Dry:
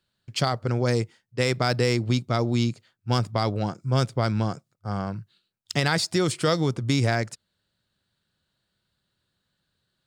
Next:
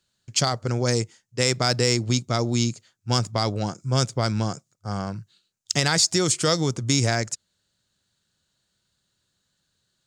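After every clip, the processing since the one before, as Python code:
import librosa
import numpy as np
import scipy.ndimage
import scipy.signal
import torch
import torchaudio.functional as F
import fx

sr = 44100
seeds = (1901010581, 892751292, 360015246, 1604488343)

y = fx.peak_eq(x, sr, hz=6700.0, db=14.5, octaves=0.77)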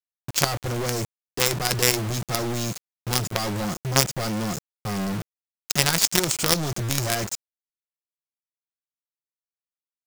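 y = 10.0 ** (-11.5 / 20.0) * np.tanh(x / 10.0 ** (-11.5 / 20.0))
y = y + 0.37 * np.pad(y, (int(5.6 * sr / 1000.0), 0))[:len(y)]
y = fx.quant_companded(y, sr, bits=2)
y = y * 10.0 ** (-1.0 / 20.0)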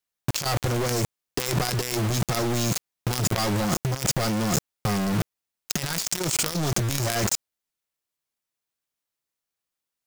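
y = fx.over_compress(x, sr, threshold_db=-30.0, ratio=-1.0)
y = y * 10.0 ** (4.5 / 20.0)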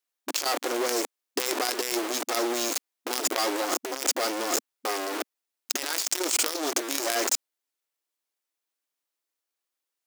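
y = fx.brickwall_highpass(x, sr, low_hz=250.0)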